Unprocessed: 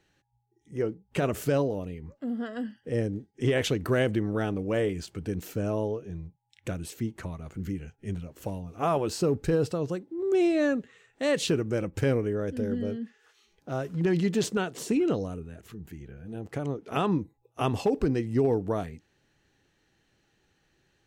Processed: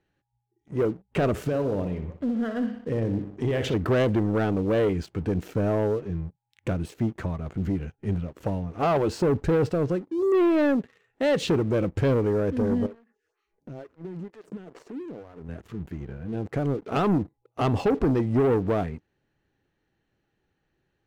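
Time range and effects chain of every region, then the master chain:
1.4–3.74 compressor 5:1, threshold -28 dBFS + analogue delay 61 ms, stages 2048, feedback 54%, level -10 dB
12.86–15.49 bell 3400 Hz -9.5 dB 0.54 oct + compressor 8:1, threshold -40 dBFS + photocell phaser 2.2 Hz
whole clip: LPF 1600 Hz 6 dB/oct; sample leveller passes 2

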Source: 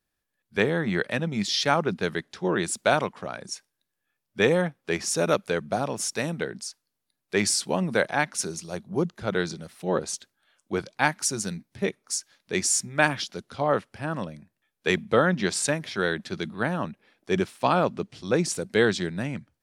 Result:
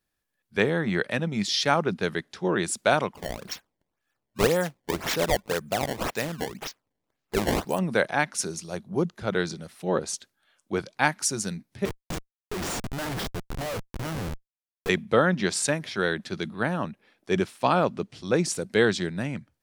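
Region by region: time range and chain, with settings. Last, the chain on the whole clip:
3.14–7.79 dynamic EQ 220 Hz, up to -5 dB, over -35 dBFS, Q 1.1 + decimation with a swept rate 20×, swing 160% 1.9 Hz
11.85–14.89 de-esser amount 85% + Schmitt trigger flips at -35.5 dBFS
whole clip: dry

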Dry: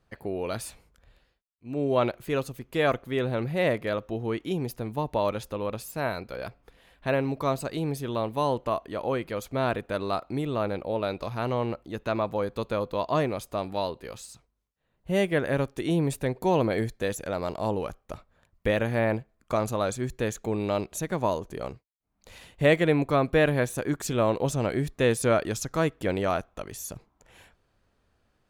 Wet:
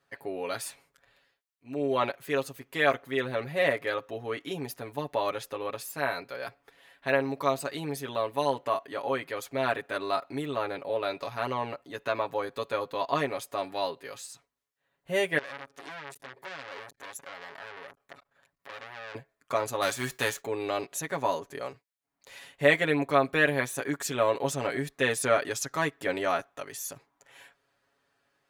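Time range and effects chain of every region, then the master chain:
15.38–19.15 compressor 3:1, threshold -34 dBFS + core saturation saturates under 2600 Hz
19.81–20.4 spectral whitening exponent 0.6 + bell 150 Hz +3.5 dB 1.9 oct
whole clip: HPF 540 Hz 6 dB/oct; bell 1800 Hz +4.5 dB 0.41 oct; comb 7.2 ms, depth 78%; gain -1 dB

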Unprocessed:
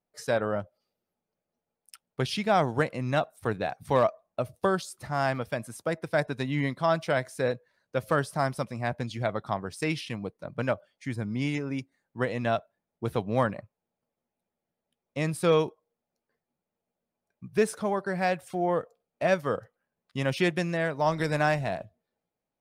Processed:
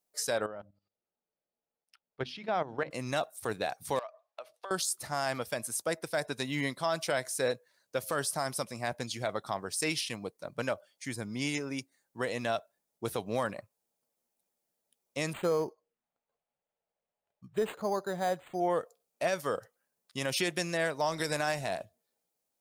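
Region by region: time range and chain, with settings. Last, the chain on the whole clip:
0.46–2.91 notches 50/100/150/200/250/300 Hz + level quantiser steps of 13 dB + air absorption 310 m
3.99–4.71 HPF 360 Hz + three-band isolator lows -16 dB, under 510 Hz, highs -21 dB, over 4200 Hz + compressor 5:1, threshold -38 dBFS
15.33–18.6 envelope phaser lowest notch 290 Hz, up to 3000 Hz, full sweep at -28.5 dBFS + decimation joined by straight lines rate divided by 8×
whole clip: tone controls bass -8 dB, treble +13 dB; limiter -18 dBFS; gain -1.5 dB

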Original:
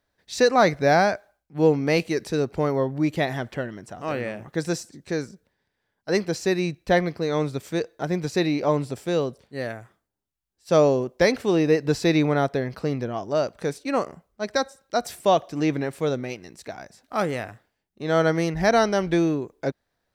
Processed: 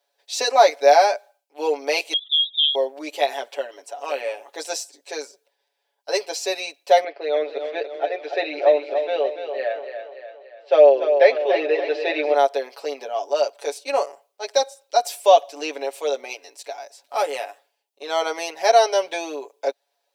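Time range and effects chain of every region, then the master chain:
2.13–2.75 spectral contrast raised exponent 3.9 + bell 580 Hz -5 dB 1.3 oct + inverted band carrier 3700 Hz
7.04–12.34 speaker cabinet 320–3200 Hz, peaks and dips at 340 Hz +6 dB, 620 Hz +5 dB, 1000 Hz -8 dB, 1800 Hz +6 dB + split-band echo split 350 Hz, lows 0.197 s, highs 0.289 s, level -8 dB
whole clip: inverse Chebyshev high-pass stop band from 150 Hz, stop band 60 dB; band shelf 1500 Hz -9 dB 1.1 oct; comb 7.1 ms, depth 99%; gain +3 dB

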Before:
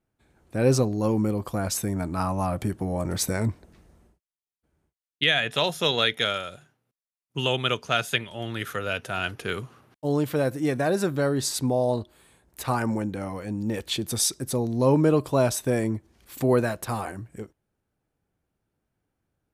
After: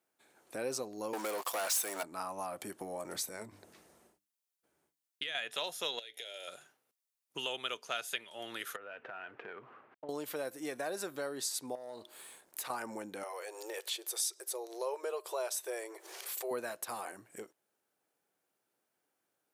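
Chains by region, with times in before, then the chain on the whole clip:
1.13–2.03 HPF 630 Hz + sample leveller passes 5
3.15–5.35 low shelf 160 Hz +10 dB + notches 50/100/150/200/250/300 Hz + compressor, threshold -24 dBFS
5.99–6.48 compressor 12:1, threshold -32 dBFS + fixed phaser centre 480 Hz, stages 4 + doubler 17 ms -13 dB
8.76–10.09 CVSD 64 kbps + LPF 2200 Hz 24 dB/oct + compressor 5:1, threshold -37 dBFS
11.75–12.7 compressor 10:1, threshold -34 dBFS + sample leveller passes 1
13.23–16.51 brick-wall FIR high-pass 340 Hz + upward compressor, threshold -29 dBFS
whole clip: HPF 430 Hz 12 dB/oct; high shelf 5100 Hz +7.5 dB; compressor 2:1, threshold -45 dBFS

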